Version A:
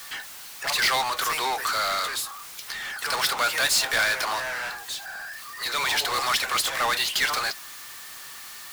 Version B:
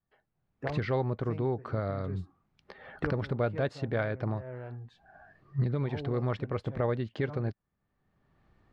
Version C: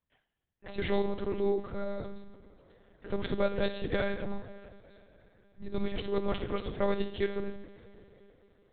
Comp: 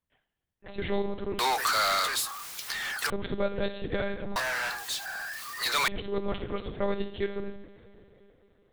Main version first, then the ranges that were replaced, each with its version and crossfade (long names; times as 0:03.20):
C
0:01.39–0:03.10: punch in from A
0:04.36–0:05.88: punch in from A
not used: B